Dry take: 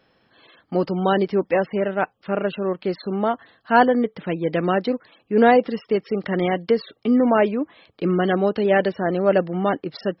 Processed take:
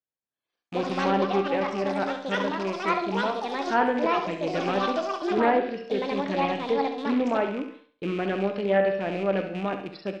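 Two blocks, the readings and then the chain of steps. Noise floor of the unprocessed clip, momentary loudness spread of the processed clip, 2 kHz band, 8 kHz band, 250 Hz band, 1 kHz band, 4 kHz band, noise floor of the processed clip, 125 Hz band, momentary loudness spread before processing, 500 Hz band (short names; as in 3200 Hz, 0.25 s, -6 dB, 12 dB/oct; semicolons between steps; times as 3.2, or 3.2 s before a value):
-65 dBFS, 7 LU, -4.0 dB, n/a, -6.5 dB, -3.5 dB, 0.0 dB, under -85 dBFS, -7.5 dB, 9 LU, -5.5 dB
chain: rattling part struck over -29 dBFS, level -22 dBFS; resonator 65 Hz, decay 0.88 s, harmonics all, mix 70%; echoes that change speed 0.229 s, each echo +6 st, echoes 2; expander -41 dBFS; flutter echo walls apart 11.7 m, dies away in 0.45 s; treble ducked by the level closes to 2000 Hz, closed at -15 dBFS; Doppler distortion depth 0.14 ms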